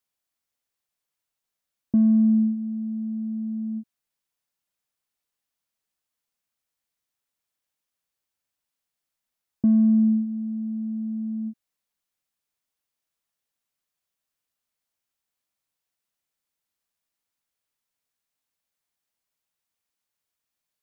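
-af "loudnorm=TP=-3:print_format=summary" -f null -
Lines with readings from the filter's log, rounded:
Input Integrated:    -23.7 LUFS
Input True Peak:     -12.4 dBTP
Input LRA:            10.4 LU
Input Threshold:     -34.1 LUFS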